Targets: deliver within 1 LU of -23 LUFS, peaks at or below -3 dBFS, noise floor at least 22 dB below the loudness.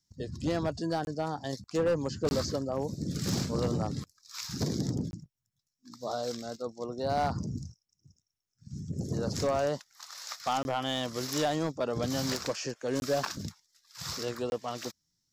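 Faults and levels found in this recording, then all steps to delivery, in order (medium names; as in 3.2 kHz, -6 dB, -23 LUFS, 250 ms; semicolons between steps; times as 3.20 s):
clipped samples 0.9%; clipping level -22.5 dBFS; dropouts 6; longest dropout 21 ms; loudness -33.0 LUFS; peak level -22.5 dBFS; loudness target -23.0 LUFS
-> clip repair -22.5 dBFS; interpolate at 1.05/2.29/5.11/10.63/13.00/14.50 s, 21 ms; trim +10 dB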